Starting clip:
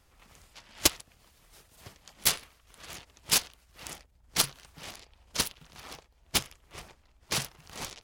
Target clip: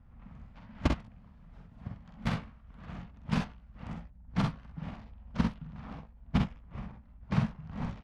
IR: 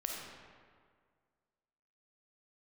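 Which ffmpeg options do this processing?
-af "lowpass=1.3k,lowshelf=f=280:t=q:w=3:g=8.5,aecho=1:1:46|64:0.596|0.398"

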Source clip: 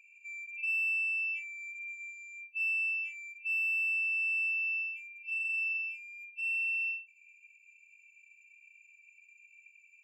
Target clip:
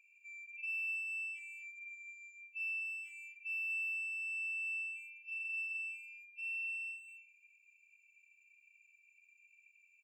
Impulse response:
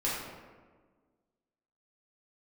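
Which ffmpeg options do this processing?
-filter_complex "[0:a]asplit=2[a][b];[b]adelay=240,highpass=300,lowpass=3.4k,asoftclip=type=hard:threshold=-35dB,volume=-10dB[c];[a][c]amix=inputs=2:normalize=0,volume=-7.5dB"

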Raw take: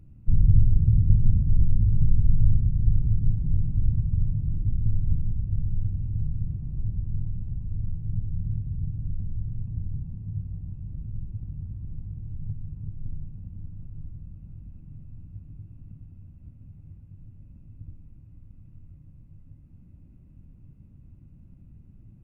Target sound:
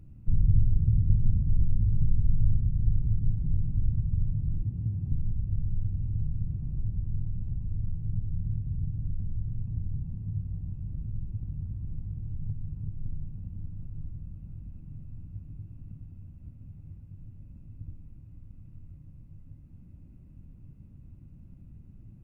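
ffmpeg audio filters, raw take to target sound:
-filter_complex "[0:a]asettb=1/sr,asplit=3[a][b][c];[a]atrim=end=4.634[d];[b]atrim=start=4.63:end=5.12,asetpts=PTS-STARTPTS,afade=t=in:d=0.004:c=qsin,afade=t=out:st=0.486:d=0.004:c=qsin,highpass=93[e];[c]atrim=start=5.116[f];[d][e]acrossfade=d=0.004:c1=hsin:c2=qsin[g];[g][f]acrossfade=d=0.004:c1=qsin:c2=hsin,asplit=2[h][i];[i]acompressor=threshold=-29dB:ratio=6,volume=1dB[j];[h][j]amix=inputs=2:normalize=0,volume=-6dB"

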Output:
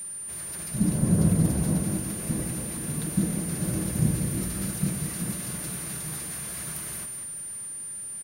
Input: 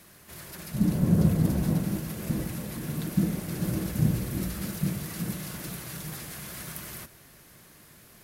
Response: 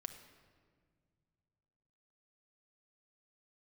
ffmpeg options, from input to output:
-af "aecho=1:1:192|611:0.376|0.178,aeval=exprs='val(0)+0.02*sin(2*PI*9200*n/s)':c=same"

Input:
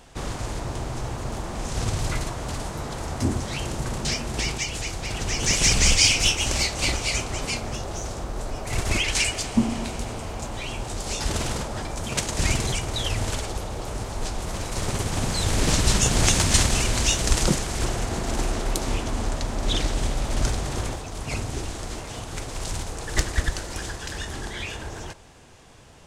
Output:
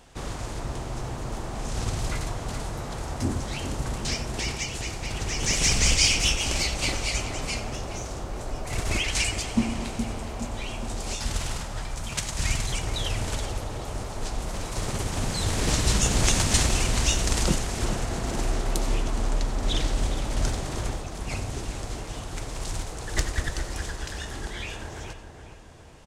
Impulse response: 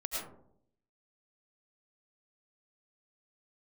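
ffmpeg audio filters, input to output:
-filter_complex "[0:a]asettb=1/sr,asplit=3[a][b][c];[a]atrim=end=11.154[d];[b]atrim=start=11.15:end=12.72,asetpts=PTS-STARTPTS,afade=t=in:d=0.004:c=qsin,afade=t=out:st=1.566:d=0.004:c=qsin,equalizer=f=380:t=o:w=1.8:g=-8.5[e];[c]atrim=start=12.716[f];[d][e]acrossfade=d=0.004:c1=hsin:c2=qsin[g];[g][f]acrossfade=d=0.004:c1=qsin:c2=hsin,asplit=2[h][i];[i]adelay=418,lowpass=f=2k:p=1,volume=-8.5dB,asplit=2[j][k];[k]adelay=418,lowpass=f=2k:p=1,volume=0.54,asplit=2[l][m];[m]adelay=418,lowpass=f=2k:p=1,volume=0.54,asplit=2[n][o];[o]adelay=418,lowpass=f=2k:p=1,volume=0.54,asplit=2[p][q];[q]adelay=418,lowpass=f=2k:p=1,volume=0.54,asplit=2[r][s];[s]adelay=418,lowpass=f=2k:p=1,volume=0.54[t];[h][j][l][n][p][r][t]amix=inputs=7:normalize=0,asplit=2[u][v];[1:a]atrim=start_sample=2205,atrim=end_sample=4410[w];[v][w]afir=irnorm=-1:irlink=0,volume=-4dB[x];[u][x]amix=inputs=2:normalize=0,volume=-6.5dB"

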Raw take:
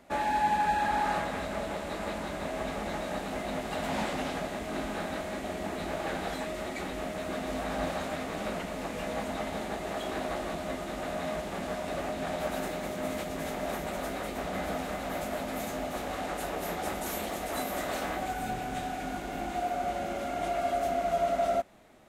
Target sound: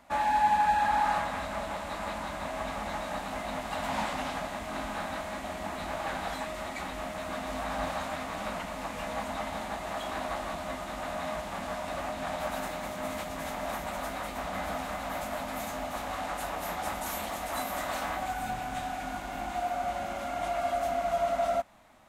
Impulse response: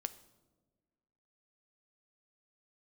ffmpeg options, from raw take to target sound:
-af "equalizer=f=160:t=o:w=0.67:g=-4,equalizer=f=400:t=o:w=0.67:g=-12,equalizer=f=1k:t=o:w=0.67:g=6"

